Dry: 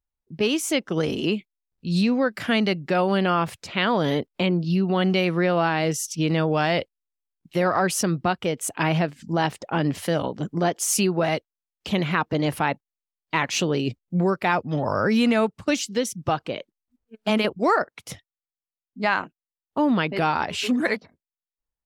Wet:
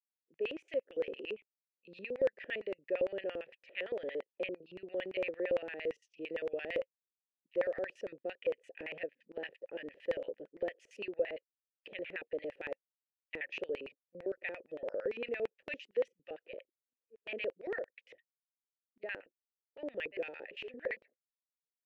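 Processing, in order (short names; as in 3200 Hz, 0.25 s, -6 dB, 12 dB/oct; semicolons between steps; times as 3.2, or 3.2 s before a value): vowel filter e; LFO band-pass square 8.8 Hz 390–2300 Hz; gain +1 dB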